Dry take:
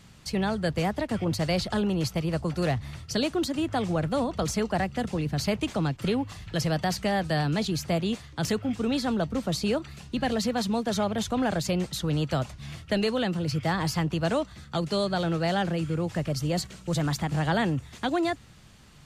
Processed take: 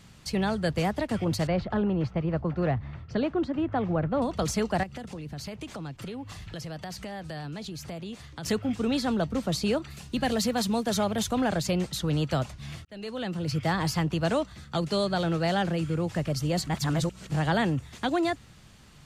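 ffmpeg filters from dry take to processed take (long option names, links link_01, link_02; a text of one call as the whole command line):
ffmpeg -i in.wav -filter_complex "[0:a]asettb=1/sr,asplit=3[link_01][link_02][link_03];[link_01]atrim=end=1.474[link_04];[link_02]atrim=start=1.47:end=4.22,asetpts=PTS-STARTPTS,afade=type=in:duration=0.004:curve=qsin,afade=type=out:start_time=2.746:duration=0.004:curve=qsin,lowpass=1800[link_05];[link_03]atrim=start=4.216[link_06];[link_04][link_05]acrossfade=duration=0.004:curve1=hsin:curve2=qsin[link_07];[link_07][link_06]acrossfade=duration=0.004:curve1=qsin:curve2=hsin,asettb=1/sr,asplit=3[link_08][link_09][link_10];[link_08]atrim=end=4.834[link_11];[link_09]atrim=start=4.83:end=8.46,asetpts=PTS-STARTPTS,afade=type=in:duration=0.004:curve=qsin,afade=type=out:start_time=3.626:duration=0.004:curve=qsin,acompressor=threshold=-36dB:ratio=4:attack=3.2:release=140:knee=1:detection=peak[link_12];[link_10]atrim=start=8.456[link_13];[link_11][link_12]acrossfade=duration=0.004:curve1=hsin:curve2=qsin[link_14];[link_14][link_13]acrossfade=duration=0.004:curve1=qsin:curve2=hsin,asettb=1/sr,asplit=3[link_15][link_16][link_17];[link_15]atrim=end=9.904[link_18];[link_16]atrim=start=9.9:end=11.41,asetpts=PTS-STARTPTS,afade=type=in:duration=0.004:curve=qsin,afade=type=out:start_time=1.506:duration=0.004:curve=qsin,highshelf=frequency=8000:gain=9[link_19];[link_17]atrim=start=11.406[link_20];[link_18][link_19]acrossfade=duration=0.004:curve1=hsin:curve2=qsin[link_21];[link_21][link_20]acrossfade=duration=0.004:curve1=qsin:curve2=hsin,asplit=4[link_22][link_23][link_24][link_25];[link_22]atrim=end=12.85,asetpts=PTS-STARTPTS,afade=type=out:start_time=12.846:duration=0.004:curve=hsin[link_26];[link_23]atrim=start=12.85:end=16.672,asetpts=PTS-STARTPTS,afade=type=in:duration=0.73[link_27];[link_24]atrim=start=16.668:end=17.302,asetpts=PTS-STARTPTS,areverse[link_28];[link_25]atrim=start=17.298[link_29];[link_26][link_27]concat=n=2:v=0:a=1[link_30];[link_30][link_28]acrossfade=duration=0.004:curve1=hsin:curve2=hsin[link_31];[link_31][link_29]acrossfade=duration=0.004:curve1=hsin:curve2=hsin" out.wav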